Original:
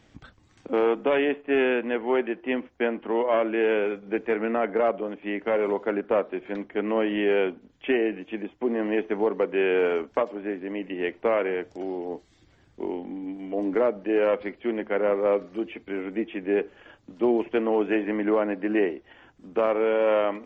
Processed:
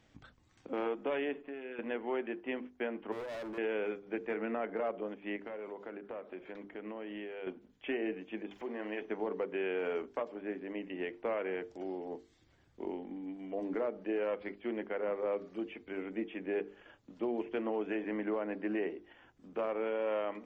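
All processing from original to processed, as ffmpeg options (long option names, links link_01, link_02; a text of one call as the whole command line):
ffmpeg -i in.wav -filter_complex "[0:a]asettb=1/sr,asplit=3[link_01][link_02][link_03];[link_01]atrim=end=1.344[link_04];[link_02]atrim=start=1.34:end=1.79,asetpts=PTS-STARTPTS,afade=type=in:duration=0.004:curve=qsin,afade=type=out:start_time=0.446:duration=0.004:curve=qsin,aecho=1:1:7.4:0.57,atrim=end_sample=19845,acompressor=threshold=-32dB:ratio=10:attack=3.2:release=140:knee=1:detection=peak[link_05];[link_03]atrim=start=1.786[link_06];[link_04][link_05]acrossfade=duration=0.004:curve1=hsin:curve2=qsin[link_07];[link_07][link_06]acrossfade=duration=0.004:curve1=qsin:curve2=hsin,asettb=1/sr,asplit=3[link_08][link_09][link_10];[link_08]atrim=end=3.124[link_11];[link_09]atrim=start=3.12:end=3.58,asetpts=PTS-STARTPTS,afade=type=in:duration=0.004:curve=qsin,afade=type=out:start_time=0.456:duration=0.004:curve=qsin,equalizer=frequency=2700:width=0.61:gain=-14,asoftclip=type=hard:threshold=-31.5dB[link_12];[link_10]atrim=start=3.576[link_13];[link_11][link_12]acrossfade=duration=0.004:curve1=hsin:curve2=qsin[link_14];[link_14][link_13]acrossfade=duration=0.004:curve1=qsin:curve2=hsin,asettb=1/sr,asplit=3[link_15][link_16][link_17];[link_15]atrim=end=5.364[link_18];[link_16]atrim=start=5.36:end=7.47,asetpts=PTS-STARTPTS,afade=type=in:duration=0.004:curve=qsin,afade=type=out:start_time=2.106:duration=0.004:curve=qsin,acompressor=threshold=-32dB:ratio=5:attack=3.2:release=140:knee=1:detection=peak,aecho=1:1:855:0.0794,atrim=end_sample=93051[link_19];[link_17]atrim=start=7.466[link_20];[link_18][link_19]acrossfade=duration=0.004:curve1=hsin:curve2=qsin[link_21];[link_21][link_20]acrossfade=duration=0.004:curve1=qsin:curve2=hsin,asettb=1/sr,asplit=3[link_22][link_23][link_24];[link_22]atrim=end=8.514[link_25];[link_23]atrim=start=8.51:end=9.02,asetpts=PTS-STARTPTS,afade=type=in:duration=0.004:curve=qsin,afade=type=out:start_time=0.506:duration=0.004:curve=qsin,lowshelf=frequency=480:gain=-10.5,acompressor=mode=upward:threshold=-32dB:ratio=2.5:attack=3.2:release=140:knee=2.83:detection=peak,asplit=2[link_26][link_27];[link_27]adelay=47,volume=-11dB[link_28];[link_26][link_28]amix=inputs=2:normalize=0,atrim=end_sample=22491[link_29];[link_24]atrim=start=9.016[link_30];[link_25][link_29]acrossfade=duration=0.004:curve1=hsin:curve2=qsin[link_31];[link_31][link_30]acrossfade=duration=0.004:curve1=qsin:curve2=hsin,bandreject=frequency=50:width_type=h:width=6,bandreject=frequency=100:width_type=h:width=6,bandreject=frequency=150:width_type=h:width=6,bandreject=frequency=200:width_type=h:width=6,bandreject=frequency=250:width_type=h:width=6,bandreject=frequency=300:width_type=h:width=6,bandreject=frequency=350:width_type=h:width=6,bandreject=frequency=400:width_type=h:width=6,bandreject=frequency=450:width_type=h:width=6,alimiter=limit=-18dB:level=0:latency=1:release=135,volume=-8dB" out.wav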